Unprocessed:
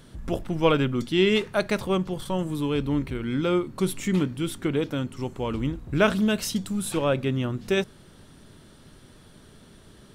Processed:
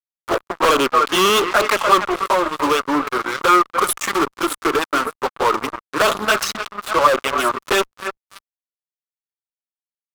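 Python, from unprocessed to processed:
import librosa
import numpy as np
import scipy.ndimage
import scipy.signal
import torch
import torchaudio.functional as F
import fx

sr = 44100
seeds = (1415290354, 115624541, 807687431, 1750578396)

p1 = fx.wiener(x, sr, points=15)
p2 = scipy.signal.sosfilt(scipy.signal.butter(4, 330.0, 'highpass', fs=sr, output='sos'), p1)
p3 = fx.tilt_eq(p2, sr, slope=2.5)
p4 = p3 + fx.echo_alternate(p3, sr, ms=291, hz=2200.0, feedback_pct=55, wet_db=-13.5, dry=0)
p5 = fx.env_flanger(p4, sr, rest_ms=11.1, full_db=-21.0)
p6 = fx.lowpass(p5, sr, hz=3300.0, slope=12, at=(6.43, 7.24))
p7 = fx.fuzz(p6, sr, gain_db=37.0, gate_db=-43.0)
p8 = fx.peak_eq(p7, sr, hz=1200.0, db=13.5, octaves=0.61)
p9 = fx.quant_companded(p8, sr, bits=8)
y = p9 * 10.0 ** (-2.0 / 20.0)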